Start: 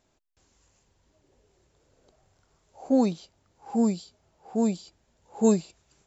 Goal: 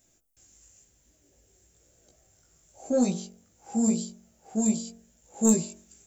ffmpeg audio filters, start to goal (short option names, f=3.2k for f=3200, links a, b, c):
-af "equalizer=f=1k:t=o:w=0.6:g=-11,bandreject=f=430:w=12,bandreject=f=45.82:t=h:w=4,bandreject=f=91.64:t=h:w=4,bandreject=f=137.46:t=h:w=4,bandreject=f=183.28:t=h:w=4,bandreject=f=229.1:t=h:w=4,bandreject=f=274.92:t=h:w=4,bandreject=f=320.74:t=h:w=4,bandreject=f=366.56:t=h:w=4,bandreject=f=412.38:t=h:w=4,bandreject=f=458.2:t=h:w=4,bandreject=f=504.02:t=h:w=4,bandreject=f=549.84:t=h:w=4,bandreject=f=595.66:t=h:w=4,bandreject=f=641.48:t=h:w=4,bandreject=f=687.3:t=h:w=4,bandreject=f=733.12:t=h:w=4,bandreject=f=778.94:t=h:w=4,bandreject=f=824.76:t=h:w=4,bandreject=f=870.58:t=h:w=4,bandreject=f=916.4:t=h:w=4,bandreject=f=962.22:t=h:w=4,bandreject=f=1.00804k:t=h:w=4,bandreject=f=1.05386k:t=h:w=4,bandreject=f=1.09968k:t=h:w=4,bandreject=f=1.1455k:t=h:w=4,bandreject=f=1.19132k:t=h:w=4,bandreject=f=1.23714k:t=h:w=4,bandreject=f=1.28296k:t=h:w=4,bandreject=f=1.32878k:t=h:w=4,bandreject=f=1.3746k:t=h:w=4,bandreject=f=1.42042k:t=h:w=4,bandreject=f=1.46624k:t=h:w=4,bandreject=f=1.51206k:t=h:w=4,bandreject=f=1.55788k:t=h:w=4,flanger=delay=16.5:depth=2:speed=0.96,asoftclip=type=tanh:threshold=-18dB,aexciter=amount=3.4:drive=8:freq=6.1k,volume=4.5dB"